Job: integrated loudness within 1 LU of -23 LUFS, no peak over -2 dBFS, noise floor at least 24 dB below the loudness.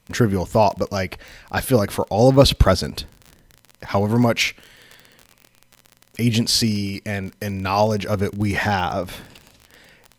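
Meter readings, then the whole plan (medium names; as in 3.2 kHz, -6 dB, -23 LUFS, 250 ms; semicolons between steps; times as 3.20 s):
tick rate 31 per s; loudness -20.0 LUFS; peak level -1.0 dBFS; loudness target -23.0 LUFS
-> de-click; trim -3 dB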